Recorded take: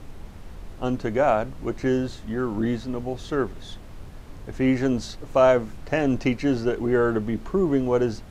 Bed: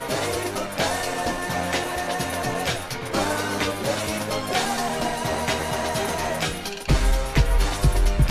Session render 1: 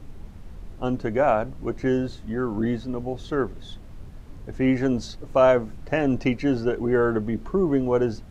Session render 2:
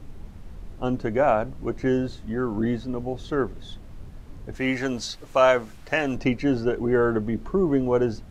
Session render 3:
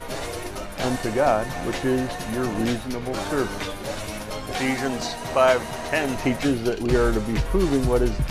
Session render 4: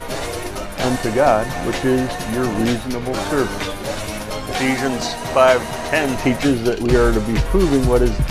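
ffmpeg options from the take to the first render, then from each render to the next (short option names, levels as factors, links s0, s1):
-af "afftdn=nr=6:nf=-41"
-filter_complex "[0:a]asettb=1/sr,asplit=3[s0][s1][s2];[s0]atrim=end=4.554[s3];[s1]atrim=start=4.55:end=6.16,asetpts=PTS-STARTPTS,afade=t=in:d=0.004:c=qsin,afade=t=out:st=1.606:d=0.004:c=qsin,tiltshelf=f=780:g=-7[s4];[s2]atrim=start=6.156[s5];[s3][s4]acrossfade=d=0.004:c1=hsin:c2=qsin[s6];[s6][s5]acrossfade=d=0.004:c1=qsin:c2=hsin"
-filter_complex "[1:a]volume=0.501[s0];[0:a][s0]amix=inputs=2:normalize=0"
-af "volume=1.88,alimiter=limit=0.891:level=0:latency=1"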